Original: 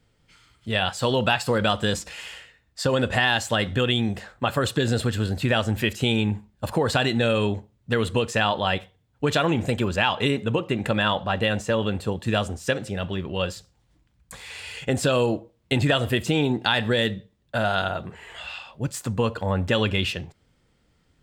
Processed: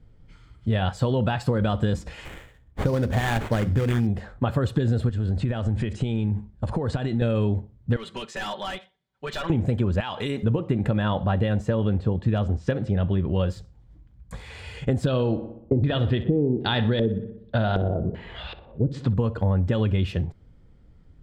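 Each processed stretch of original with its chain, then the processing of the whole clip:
2.25–4.07 s: hum notches 50/100/150/200/250/300/350 Hz + sample-rate reducer 5.2 kHz, jitter 20%
5.09–7.22 s: steep low-pass 10 kHz 96 dB/octave + compression 5:1, threshold -28 dBFS
7.96–9.50 s: band-pass filter 3.6 kHz, Q 0.64 + comb 5.2 ms, depth 82% + hard clipper -25.5 dBFS
10.00–10.43 s: tilt EQ +3 dB/octave + compression 2:1, threshold -28 dBFS
11.89–13.36 s: low-pass 5.2 kHz + hard clipper -11.5 dBFS
15.07–19.14 s: LFO low-pass square 1.3 Hz 450–3900 Hz + filtered feedback delay 61 ms, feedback 55%, low-pass 3.3 kHz, level -14 dB
whole clip: tilt EQ -3.5 dB/octave; band-stop 2.7 kHz, Q 17; compression, threshold -19 dBFS

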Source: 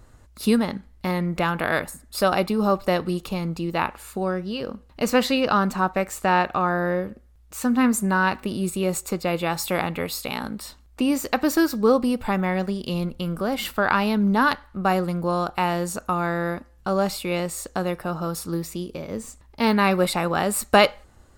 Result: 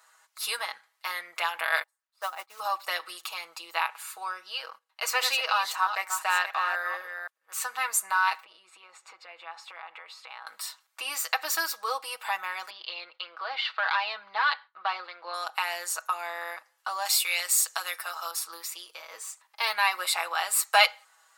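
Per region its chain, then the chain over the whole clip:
1.83–2.60 s: low-pass 1 kHz 6 dB/octave + companded quantiser 6-bit + upward expansion 2.5:1, over -35 dBFS
4.70–7.66 s: chunks repeated in reverse 257 ms, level -8 dB + gate -40 dBFS, range -13 dB
8.43–10.47 s: compression, threshold -30 dBFS + tape spacing loss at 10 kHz 27 dB
12.70–15.34 s: hard clipper -13 dBFS + Chebyshev band-pass 200–4400 Hz, order 4 + expander -49 dBFS
17.05–18.31 s: high-pass 420 Hz 6 dB/octave + treble shelf 3.4 kHz +9.5 dB
whole clip: high-pass 910 Hz 24 dB/octave; comb 6.2 ms, depth 76%; dynamic bell 1.3 kHz, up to -5 dB, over -33 dBFS, Q 1.2

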